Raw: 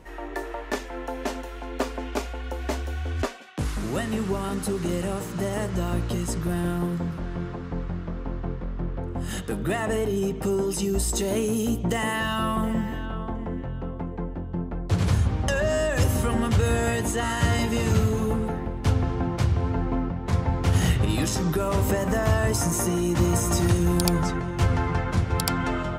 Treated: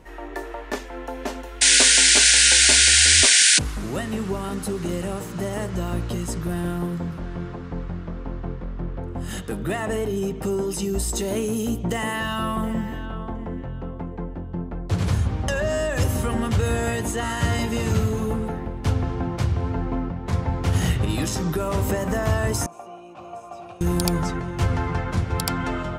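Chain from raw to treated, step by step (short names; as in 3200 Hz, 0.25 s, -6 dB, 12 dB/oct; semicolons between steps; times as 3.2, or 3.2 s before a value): 1.61–3.59 painted sound noise 1400–9800 Hz -15 dBFS; 22.66–23.81 vowel filter a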